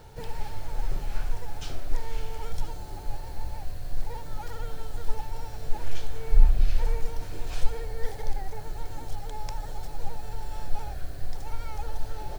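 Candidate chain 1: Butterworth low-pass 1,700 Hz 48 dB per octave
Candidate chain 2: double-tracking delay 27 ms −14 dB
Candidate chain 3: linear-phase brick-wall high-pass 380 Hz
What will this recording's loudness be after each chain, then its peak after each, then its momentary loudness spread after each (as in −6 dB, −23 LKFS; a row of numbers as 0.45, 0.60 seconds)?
−36.0, −36.0, −43.5 LKFS; −3.0, −3.5, −23.5 dBFS; 11, 11, 5 LU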